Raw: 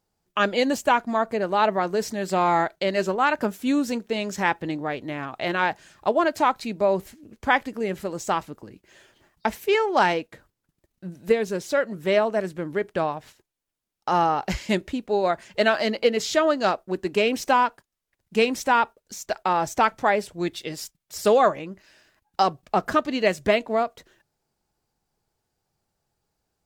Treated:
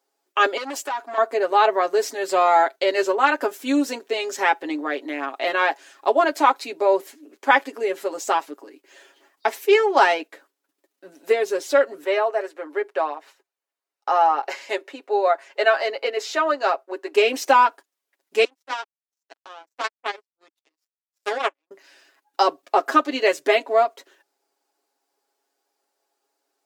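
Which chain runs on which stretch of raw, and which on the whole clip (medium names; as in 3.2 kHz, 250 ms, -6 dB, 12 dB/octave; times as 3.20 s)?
0.57–1.18 s: bass shelf 370 Hz -7 dB + compression, threshold -25 dBFS + transformer saturation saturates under 1.6 kHz
12.04–17.15 s: high-pass 480 Hz + treble shelf 3.2 kHz -9.5 dB + band-stop 3.3 kHz, Q 19
18.44–21.71 s: power-law waveshaper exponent 3 + upward expansion, over -35 dBFS
whole clip: Chebyshev high-pass 310 Hz, order 4; comb 7.3 ms, depth 82%; trim +2 dB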